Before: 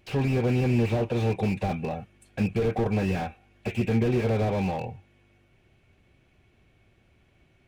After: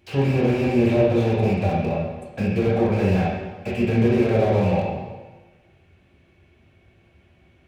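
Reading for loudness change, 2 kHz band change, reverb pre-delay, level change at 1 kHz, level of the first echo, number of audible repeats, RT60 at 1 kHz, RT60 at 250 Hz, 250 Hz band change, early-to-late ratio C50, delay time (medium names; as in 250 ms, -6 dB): +5.5 dB, +5.0 dB, 7 ms, +5.5 dB, no echo, no echo, 1.2 s, 1.2 s, +6.0 dB, 0.5 dB, no echo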